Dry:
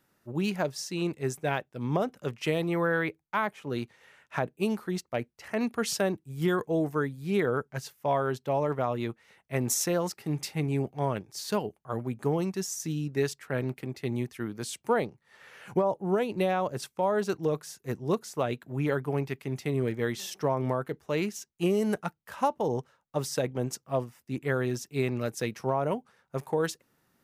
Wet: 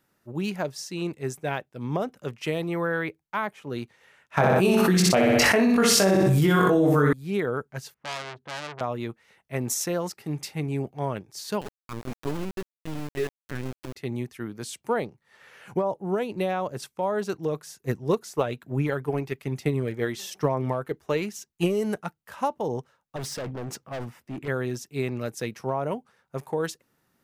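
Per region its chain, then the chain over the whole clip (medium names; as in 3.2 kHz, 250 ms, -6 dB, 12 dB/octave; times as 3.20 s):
4.37–7.13 s: doubling 21 ms -2.5 dB + feedback delay 62 ms, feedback 38%, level -4 dB + level flattener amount 100%
7.94–8.81 s: low-pass 1.4 kHz + transformer saturation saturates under 3.8 kHz
11.61–13.96 s: elliptic band-stop 420–880 Hz + LPC vocoder at 8 kHz pitch kept + small samples zeroed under -32.5 dBFS
17.83–21.85 s: transient shaper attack +6 dB, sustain +1 dB + phaser 1.1 Hz, delay 3.2 ms, feedback 26%
23.16–24.48 s: tone controls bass -1 dB, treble -9 dB + transient shaper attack +3 dB, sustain +9 dB + hard clipper -30.5 dBFS
whole clip: none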